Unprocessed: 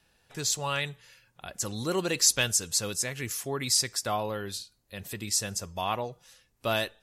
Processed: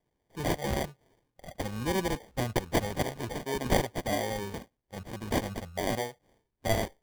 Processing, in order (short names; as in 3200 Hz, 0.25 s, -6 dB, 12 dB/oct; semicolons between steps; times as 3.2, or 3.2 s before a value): spectral noise reduction 11 dB; 2.15–2.56 LPF 1900 Hz 24 dB/oct; sample-and-hold 33×